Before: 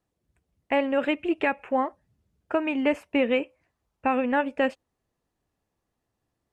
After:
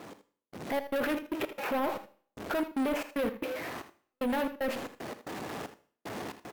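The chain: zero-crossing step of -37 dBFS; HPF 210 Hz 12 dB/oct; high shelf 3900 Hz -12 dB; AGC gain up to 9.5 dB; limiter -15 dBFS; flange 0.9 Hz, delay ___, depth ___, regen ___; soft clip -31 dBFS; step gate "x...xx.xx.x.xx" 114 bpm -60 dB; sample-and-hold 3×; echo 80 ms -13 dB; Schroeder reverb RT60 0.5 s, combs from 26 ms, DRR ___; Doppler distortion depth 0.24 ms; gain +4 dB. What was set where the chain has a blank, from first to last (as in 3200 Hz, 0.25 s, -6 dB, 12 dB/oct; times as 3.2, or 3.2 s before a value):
8.8 ms, 2.9 ms, -79%, 15.5 dB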